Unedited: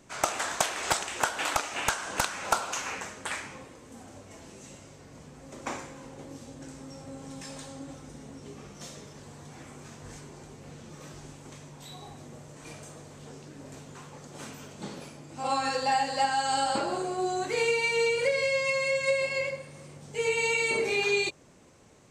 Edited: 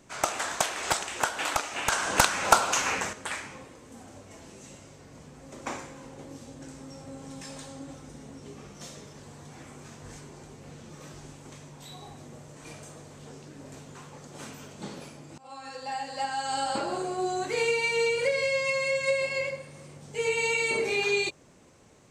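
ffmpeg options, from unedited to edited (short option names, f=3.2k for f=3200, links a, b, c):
-filter_complex "[0:a]asplit=4[a][b][c][d];[a]atrim=end=1.922[e];[b]atrim=start=1.918:end=3.132,asetpts=PTS-STARTPTS,volume=7dB[f];[c]atrim=start=3.128:end=15.38,asetpts=PTS-STARTPTS,afade=t=out:st=12.248:d=0.004:c=hsin:silence=0.0707946[g];[d]atrim=start=15.38,asetpts=PTS-STARTPTS,afade=t=in:d=1.65:silence=0.0707946[h];[e][f]acrossfade=d=0.004:c1=hsin:c2=hsin[i];[g][h]concat=n=2:v=0:a=1[j];[i][j]acrossfade=d=0.004:c1=hsin:c2=hsin"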